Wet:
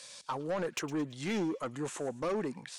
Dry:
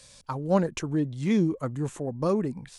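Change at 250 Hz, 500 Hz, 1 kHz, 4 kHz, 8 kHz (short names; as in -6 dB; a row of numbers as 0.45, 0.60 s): -9.5, -6.5, -4.5, +0.5, 0.0 dB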